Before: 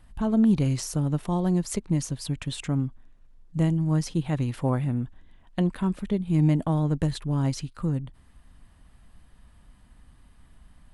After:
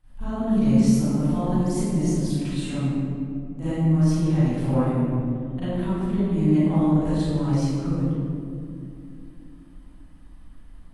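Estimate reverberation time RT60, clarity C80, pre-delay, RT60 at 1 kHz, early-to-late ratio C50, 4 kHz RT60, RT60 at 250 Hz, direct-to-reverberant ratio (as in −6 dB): 2.7 s, −4.0 dB, 34 ms, 2.2 s, −9.0 dB, 1.1 s, 4.3 s, −16.0 dB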